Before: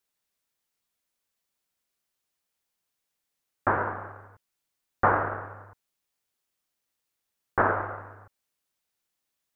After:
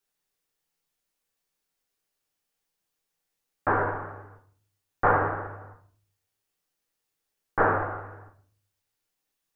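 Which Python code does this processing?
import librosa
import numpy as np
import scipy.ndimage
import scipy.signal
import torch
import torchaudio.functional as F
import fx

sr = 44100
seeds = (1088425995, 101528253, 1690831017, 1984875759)

y = fx.room_shoebox(x, sr, seeds[0], volume_m3=42.0, walls='mixed', distance_m=0.63)
y = y * librosa.db_to_amplitude(-2.5)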